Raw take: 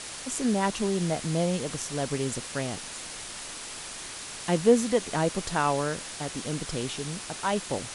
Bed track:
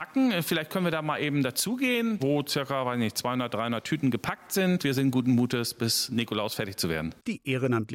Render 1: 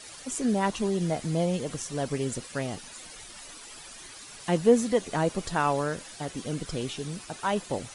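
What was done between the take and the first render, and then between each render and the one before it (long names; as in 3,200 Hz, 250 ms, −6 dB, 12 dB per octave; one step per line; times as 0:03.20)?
broadband denoise 11 dB, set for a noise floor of −40 dBFS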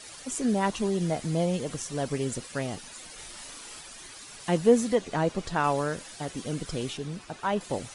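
0:03.14–0:03.81: double-tracking delay 37 ms −3 dB
0:04.95–0:05.64: high-frequency loss of the air 54 metres
0:06.97–0:07.61: low-pass filter 3,100 Hz 6 dB per octave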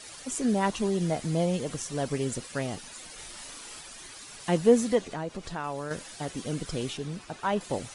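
0:05.05–0:05.91: downward compressor 2 to 1, threshold −36 dBFS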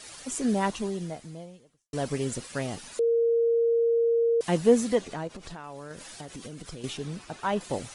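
0:00.62–0:01.93: fade out quadratic
0:02.99–0:04.41: beep over 464 Hz −20 dBFS
0:05.27–0:06.84: downward compressor 10 to 1, threshold −36 dBFS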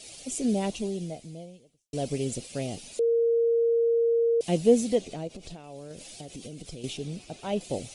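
flat-topped bell 1,300 Hz −14 dB 1.3 octaves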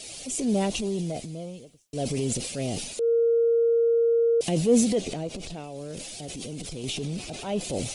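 in parallel at −1 dB: downward compressor, threshold −34 dBFS, peak gain reduction 18.5 dB
on the sum: transient designer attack −6 dB, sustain +7 dB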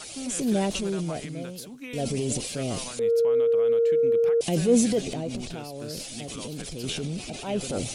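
mix in bed track −13.5 dB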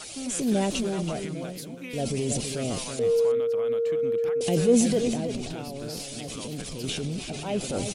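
slap from a distant wall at 56 metres, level −8 dB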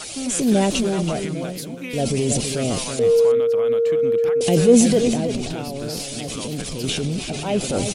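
level +7 dB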